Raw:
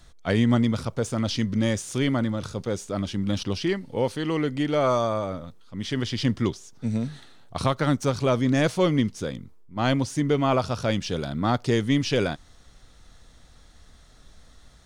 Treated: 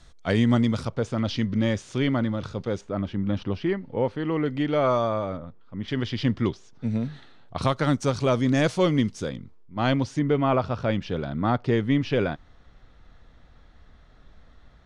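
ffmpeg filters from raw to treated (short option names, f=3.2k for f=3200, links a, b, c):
-af "asetnsamples=n=441:p=0,asendcmd='0.89 lowpass f 3900;2.81 lowpass f 2000;4.46 lowpass f 3500;5.37 lowpass f 1800;5.88 lowpass f 3600;7.62 lowpass f 8700;9.29 lowpass f 4400;10.19 lowpass f 2500',lowpass=8.5k"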